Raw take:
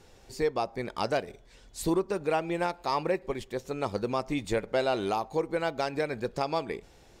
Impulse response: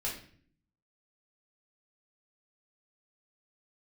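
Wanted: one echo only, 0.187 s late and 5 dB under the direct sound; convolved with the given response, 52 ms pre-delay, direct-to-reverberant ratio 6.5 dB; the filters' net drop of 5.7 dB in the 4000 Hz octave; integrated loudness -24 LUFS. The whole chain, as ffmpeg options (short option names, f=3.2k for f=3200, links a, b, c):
-filter_complex "[0:a]equalizer=f=4k:t=o:g=-7.5,aecho=1:1:187:0.562,asplit=2[a][b];[1:a]atrim=start_sample=2205,adelay=52[c];[b][c]afir=irnorm=-1:irlink=0,volume=-9.5dB[d];[a][d]amix=inputs=2:normalize=0,volume=5.5dB"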